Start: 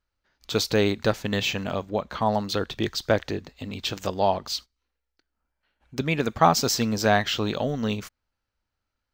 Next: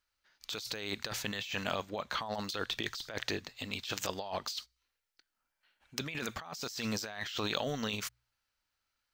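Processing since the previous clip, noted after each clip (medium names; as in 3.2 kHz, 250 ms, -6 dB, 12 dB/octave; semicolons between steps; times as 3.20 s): tilt shelf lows -7.5 dB, about 870 Hz; de-hum 59.61 Hz, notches 2; compressor with a negative ratio -30 dBFS, ratio -1; trim -8 dB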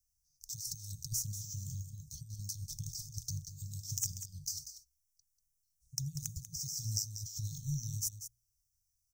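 Chebyshev band-stop 150–5600 Hz, order 5; overload inside the chain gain 26 dB; delay 191 ms -10.5 dB; trim +7.5 dB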